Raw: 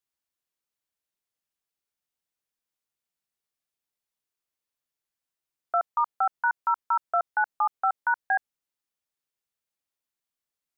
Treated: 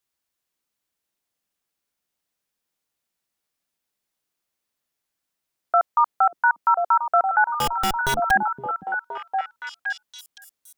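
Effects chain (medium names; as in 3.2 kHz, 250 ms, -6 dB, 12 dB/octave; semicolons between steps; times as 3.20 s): 7.53–8.31 s: Schmitt trigger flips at -38.5 dBFS; repeats whose band climbs or falls 517 ms, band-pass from 240 Hz, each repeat 1.4 oct, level 0 dB; trim +6.5 dB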